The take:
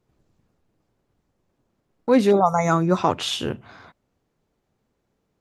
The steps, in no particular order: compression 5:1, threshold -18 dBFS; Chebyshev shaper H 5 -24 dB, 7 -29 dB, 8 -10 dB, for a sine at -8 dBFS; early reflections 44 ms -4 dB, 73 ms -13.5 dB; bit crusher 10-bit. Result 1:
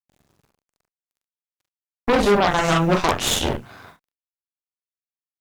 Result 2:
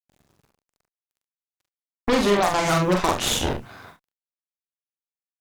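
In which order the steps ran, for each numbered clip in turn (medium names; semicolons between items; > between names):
compression > bit crusher > early reflections > Chebyshev shaper; bit crusher > Chebyshev shaper > compression > early reflections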